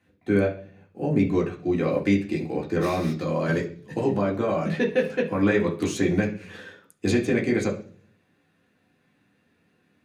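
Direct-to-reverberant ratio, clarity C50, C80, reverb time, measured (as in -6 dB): -4.0 dB, 11.0 dB, 16.0 dB, 0.45 s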